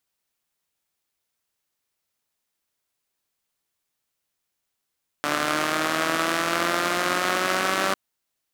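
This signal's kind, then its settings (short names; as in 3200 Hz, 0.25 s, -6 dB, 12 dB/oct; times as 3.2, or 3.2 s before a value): four-cylinder engine model, changing speed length 2.70 s, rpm 4400, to 5800, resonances 330/620/1200 Hz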